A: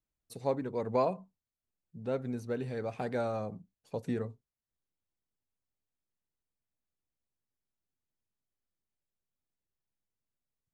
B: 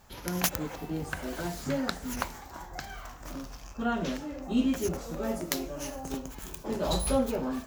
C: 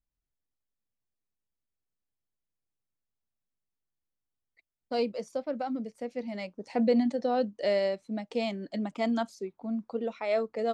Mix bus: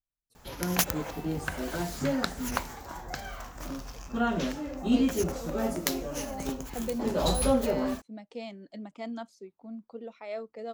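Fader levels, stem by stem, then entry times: -18.5, +2.0, -9.0 dB; 0.00, 0.35, 0.00 s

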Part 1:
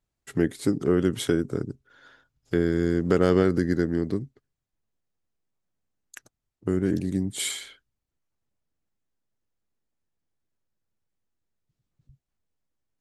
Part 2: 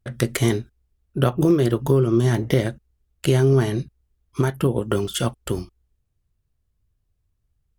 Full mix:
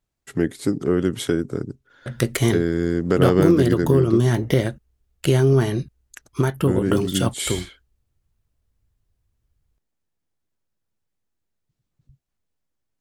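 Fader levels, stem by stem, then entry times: +2.0, +0.5 dB; 0.00, 2.00 s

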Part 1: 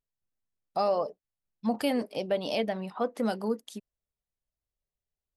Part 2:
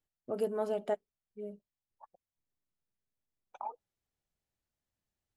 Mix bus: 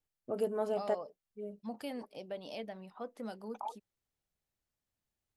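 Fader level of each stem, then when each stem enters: -13.5, -0.5 dB; 0.00, 0.00 s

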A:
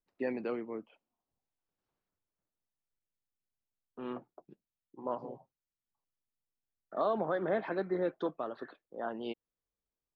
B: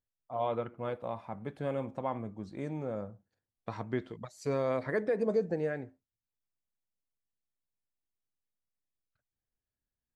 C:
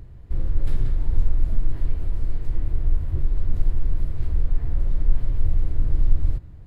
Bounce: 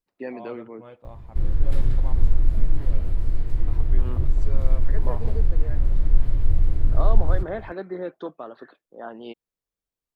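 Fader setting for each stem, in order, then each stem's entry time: +1.0, -9.0, +1.5 dB; 0.00, 0.00, 1.05 s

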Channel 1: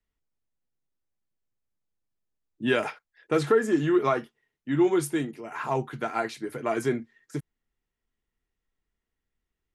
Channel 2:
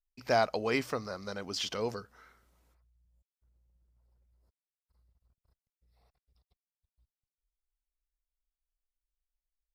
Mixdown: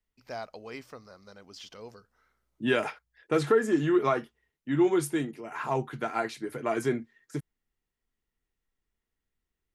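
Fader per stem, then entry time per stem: -1.5, -11.5 dB; 0.00, 0.00 s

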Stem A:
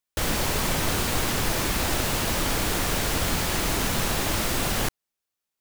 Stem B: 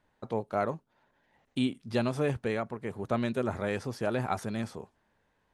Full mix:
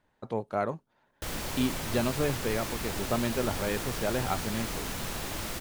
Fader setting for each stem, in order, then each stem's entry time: -10.0, 0.0 dB; 1.05, 0.00 s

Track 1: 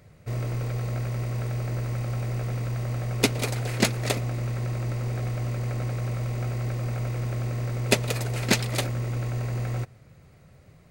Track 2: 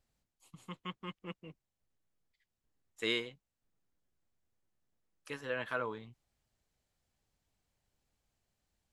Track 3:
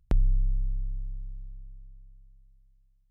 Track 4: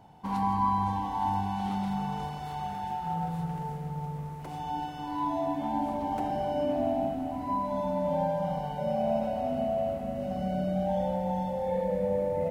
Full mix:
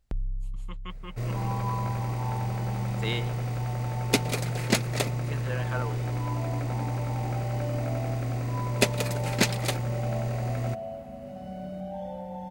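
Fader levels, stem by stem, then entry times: -1.5, +1.0, -8.0, -7.5 dB; 0.90, 0.00, 0.00, 1.05 s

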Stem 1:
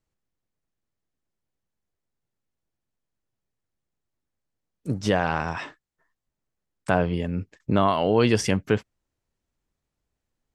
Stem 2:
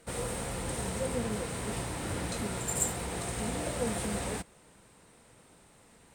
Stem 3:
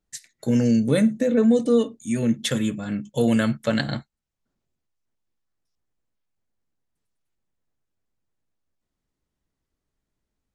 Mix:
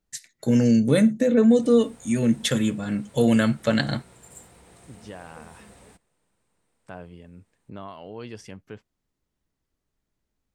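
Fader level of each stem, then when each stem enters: -18.5, -16.5, +1.0 dB; 0.00, 1.55, 0.00 s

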